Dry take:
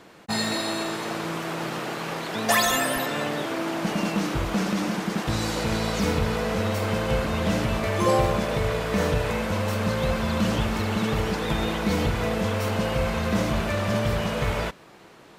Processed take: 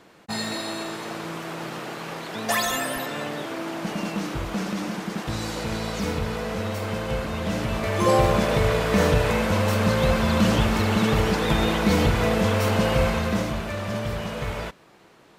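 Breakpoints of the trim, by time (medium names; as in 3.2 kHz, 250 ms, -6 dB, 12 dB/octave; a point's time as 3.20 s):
7.48 s -3 dB
8.41 s +4 dB
13.03 s +4 dB
13.60 s -4 dB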